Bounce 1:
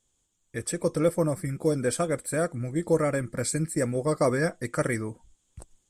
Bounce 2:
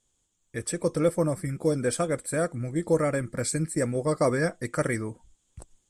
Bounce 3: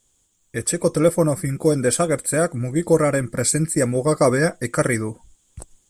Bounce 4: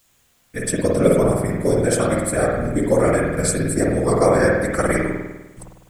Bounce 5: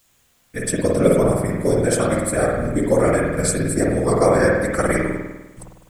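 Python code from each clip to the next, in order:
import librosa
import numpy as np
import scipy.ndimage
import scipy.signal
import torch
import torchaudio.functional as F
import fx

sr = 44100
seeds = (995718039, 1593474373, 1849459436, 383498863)

y1 = scipy.signal.sosfilt(scipy.signal.butter(4, 12000.0, 'lowpass', fs=sr, output='sos'), x)
y2 = fx.high_shelf(y1, sr, hz=11000.0, db=11.0)
y2 = y2 * 10.0 ** (7.0 / 20.0)
y3 = fx.whisperise(y2, sr, seeds[0])
y3 = fx.quant_dither(y3, sr, seeds[1], bits=10, dither='triangular')
y3 = fx.rev_spring(y3, sr, rt60_s=1.1, pass_ms=(50,), chirp_ms=75, drr_db=-2.0)
y3 = y3 * 10.0 ** (-2.5 / 20.0)
y4 = y3 + 10.0 ** (-23.5 / 20.0) * np.pad(y3, (int(204 * sr / 1000.0), 0))[:len(y3)]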